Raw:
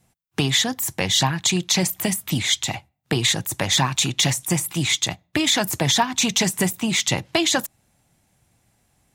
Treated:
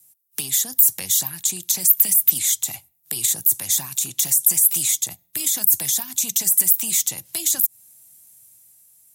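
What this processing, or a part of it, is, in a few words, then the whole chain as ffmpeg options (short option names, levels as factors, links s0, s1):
FM broadcast chain: -filter_complex "[0:a]highpass=68,dynaudnorm=f=130:g=13:m=3.76,acrossover=split=260|1300|7000[s0][s1][s2][s3];[s0]acompressor=threshold=0.0398:ratio=4[s4];[s1]acompressor=threshold=0.0316:ratio=4[s5];[s2]acompressor=threshold=0.0282:ratio=4[s6];[s3]acompressor=threshold=0.0316:ratio=4[s7];[s4][s5][s6][s7]amix=inputs=4:normalize=0,aemphasis=mode=production:type=75fm,alimiter=limit=0.473:level=0:latency=1:release=88,asoftclip=type=hard:threshold=0.422,lowpass=f=15000:w=0.5412,lowpass=f=15000:w=1.3066,aemphasis=mode=production:type=75fm,volume=0.251"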